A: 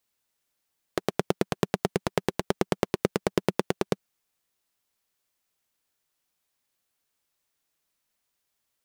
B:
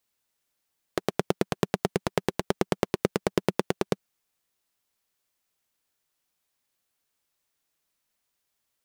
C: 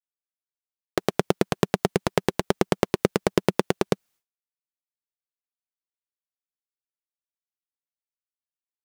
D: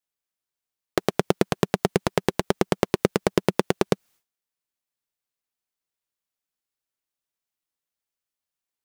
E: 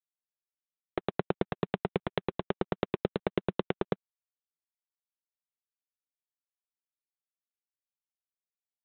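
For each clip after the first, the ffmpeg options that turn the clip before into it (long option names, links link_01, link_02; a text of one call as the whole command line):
ffmpeg -i in.wav -af anull out.wav
ffmpeg -i in.wav -af "agate=range=-33dB:threshold=-54dB:ratio=3:detection=peak,volume=4dB" out.wav
ffmpeg -i in.wav -af "alimiter=limit=-8.5dB:level=0:latency=1:release=162,volume=6.5dB" out.wav
ffmpeg -i in.wav -af "volume=-8.5dB" -ar 8000 -c:a adpcm_g726 -b:a 32k out.wav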